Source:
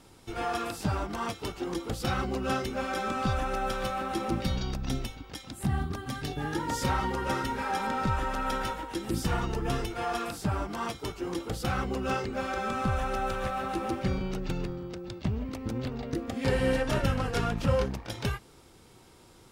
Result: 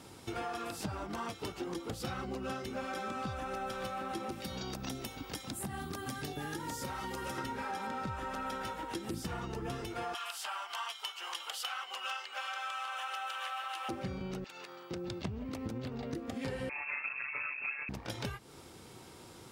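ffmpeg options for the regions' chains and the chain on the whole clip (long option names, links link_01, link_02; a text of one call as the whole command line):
ffmpeg -i in.wav -filter_complex "[0:a]asettb=1/sr,asplit=3[link_01][link_02][link_03];[link_01]atrim=end=4.314[link_04];[link_02]atrim=start=4.31:end=7.38,asetpts=PTS-STARTPTS,afade=type=in:duration=0.004:curve=qsin,afade=type=out:start_time=3.066:duration=0.004:curve=qsin,highshelf=frequency=7000:gain=11.5,acrossover=split=210|1800[link_05][link_06][link_07];[link_05]acompressor=threshold=-43dB:ratio=4[link_08];[link_06]acompressor=threshold=-38dB:ratio=4[link_09];[link_07]acompressor=threshold=-43dB:ratio=4[link_10];[link_08][link_09][link_10]amix=inputs=3:normalize=0[link_11];[link_03]atrim=start=7.376[link_12];[link_04][link_11]acrossfade=duration=0.004:curve1=hsin:curve2=qsin[link_13];[link_13][link_12]acrossfade=duration=0.004:curve1=qsin:curve2=hsin,asettb=1/sr,asplit=3[link_14][link_15][link_16];[link_14]atrim=end=10.144[link_17];[link_15]atrim=start=10.14:end=13.89,asetpts=PTS-STARTPTS,afade=type=in:duration=0.004:curve=qsin,afade=type=out:start_time=3.746:duration=0.004:curve=qsin,highpass=frequency=850:width=0.5412,highpass=frequency=850:width=1.3066,equalizer=frequency=3000:width=5.4:gain=12.5[link_18];[link_16]atrim=start=13.886[link_19];[link_17][link_18]acrossfade=duration=0.004:curve1=hsin:curve2=qsin[link_20];[link_20][link_19]acrossfade=duration=0.004:curve1=qsin:curve2=hsin,asettb=1/sr,asplit=3[link_21][link_22][link_23];[link_21]atrim=end=14.444[link_24];[link_22]atrim=start=14.44:end=14.91,asetpts=PTS-STARTPTS,afade=type=in:duration=0.004:curve=qsin,afade=type=out:start_time=0.466:duration=0.004:curve=qsin,highpass=970,acompressor=threshold=-47dB:ratio=4:attack=3.2:release=140:knee=1:detection=peak[link_25];[link_23]atrim=start=14.906[link_26];[link_24][link_25]acrossfade=duration=0.004:curve1=hsin:curve2=qsin[link_27];[link_27][link_26]acrossfade=duration=0.004:curve1=qsin:curve2=hsin,asettb=1/sr,asplit=3[link_28][link_29][link_30];[link_28]atrim=end=16.694[link_31];[link_29]atrim=start=16.69:end=17.89,asetpts=PTS-STARTPTS,afade=type=in:duration=0.004:curve=qsin,afade=type=out:start_time=1.196:duration=0.004:curve=qsin,aecho=1:1:6.6:0.77,atrim=end_sample=52920,tremolo=f=140:d=0.824,lowpass=frequency=2300:width_type=q:width=0.5098,lowpass=frequency=2300:width_type=q:width=0.6013,lowpass=frequency=2300:width_type=q:width=0.9,lowpass=frequency=2300:width_type=q:width=2.563,afreqshift=-2700[link_32];[link_30]atrim=start=17.886[link_33];[link_31][link_32]acrossfade=duration=0.004:curve1=hsin:curve2=qsin[link_34];[link_34][link_33]acrossfade=duration=0.004:curve1=qsin:curve2=hsin,highpass=78,acompressor=threshold=-40dB:ratio=6,volume=3.5dB" out.wav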